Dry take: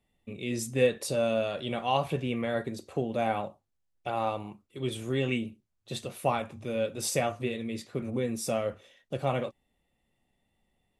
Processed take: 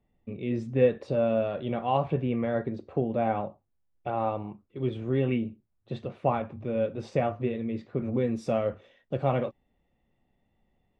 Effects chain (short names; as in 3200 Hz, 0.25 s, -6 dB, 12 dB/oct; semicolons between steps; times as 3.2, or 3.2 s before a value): tape spacing loss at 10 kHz 44 dB, from 8.02 s at 10 kHz 29 dB; gain +4.5 dB